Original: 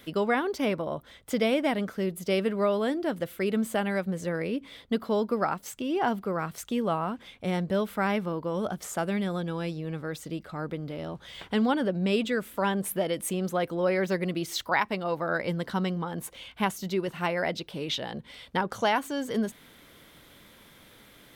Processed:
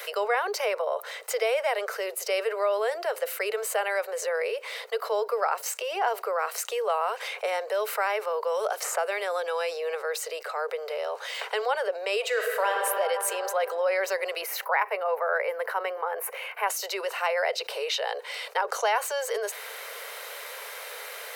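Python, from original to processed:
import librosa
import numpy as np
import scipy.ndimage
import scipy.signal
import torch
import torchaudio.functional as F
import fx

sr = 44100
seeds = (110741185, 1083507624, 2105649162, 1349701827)

y = fx.band_squash(x, sr, depth_pct=70, at=(6.89, 9.95))
y = fx.reverb_throw(y, sr, start_s=12.2, length_s=0.56, rt60_s=2.9, drr_db=2.0)
y = fx.band_shelf(y, sr, hz=5200.0, db=-14.0, octaves=1.7, at=(14.41, 16.68))
y = scipy.signal.sosfilt(scipy.signal.butter(16, 430.0, 'highpass', fs=sr, output='sos'), y)
y = fx.notch(y, sr, hz=3400.0, q=5.2)
y = fx.env_flatten(y, sr, amount_pct=50)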